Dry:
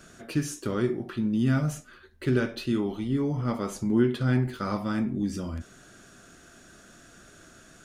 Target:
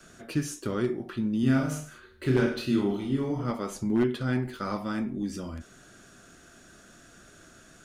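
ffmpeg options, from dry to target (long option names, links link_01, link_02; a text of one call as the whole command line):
ffmpeg -i in.wav -filter_complex "[0:a]adynamicequalizer=threshold=0.01:dfrequency=110:dqfactor=0.93:tfrequency=110:tqfactor=0.93:attack=5:release=100:ratio=0.375:range=4:mode=cutabove:tftype=bell,aeval=exprs='0.168*(abs(mod(val(0)/0.168+3,4)-2)-1)':channel_layout=same,asettb=1/sr,asplit=3[link_01][link_02][link_03];[link_01]atrim=end=1.404[link_04];[link_02]atrim=start=1.4:end=3.51,asetpts=PTS-STARTPTS,afade=type=in:duration=0.004:curve=qsin,afade=type=out:start_time=2.106:duration=0.004:curve=qsin,aecho=1:1:30|64.5|104.2|149.8|202.3:0.631|0.398|0.251|0.158|0.1,atrim=end_sample=93051[link_05];[link_03]atrim=start=3.506[link_06];[link_04][link_05]acrossfade=duration=0.004:curve1=hsin:curve2=qsin[link_07];[link_07][link_06]acrossfade=duration=0.004:curve1=qsin:curve2=hsin,volume=-1dB" out.wav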